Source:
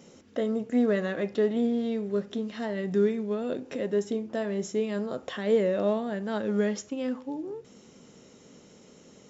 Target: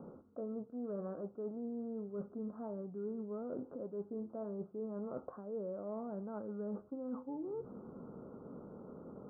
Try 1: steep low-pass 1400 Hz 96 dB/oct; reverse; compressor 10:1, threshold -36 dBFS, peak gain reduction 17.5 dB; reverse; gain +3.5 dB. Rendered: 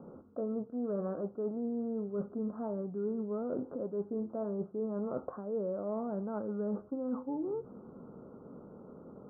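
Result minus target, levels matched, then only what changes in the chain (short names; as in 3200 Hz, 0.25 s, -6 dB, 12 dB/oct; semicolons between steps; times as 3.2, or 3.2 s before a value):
compressor: peak gain reduction -6.5 dB
change: compressor 10:1, threshold -43 dBFS, peak gain reduction 24 dB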